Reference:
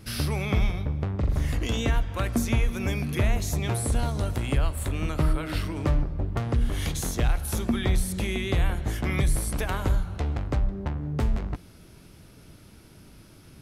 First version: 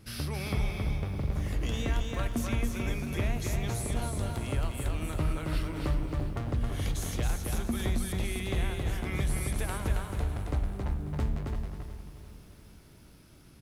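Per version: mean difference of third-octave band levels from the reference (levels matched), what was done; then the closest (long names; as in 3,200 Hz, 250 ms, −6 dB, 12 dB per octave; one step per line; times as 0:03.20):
4.0 dB: on a send: repeating echo 271 ms, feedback 26%, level −4 dB
on the sum: feedback echo at a low word length 354 ms, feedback 55%, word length 8 bits, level −12.5 dB
level −7 dB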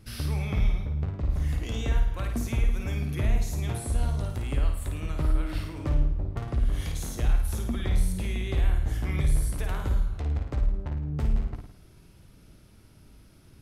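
2.5 dB: low-shelf EQ 76 Hz +9 dB
flutter between parallel walls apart 9.3 metres, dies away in 0.59 s
level −8 dB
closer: second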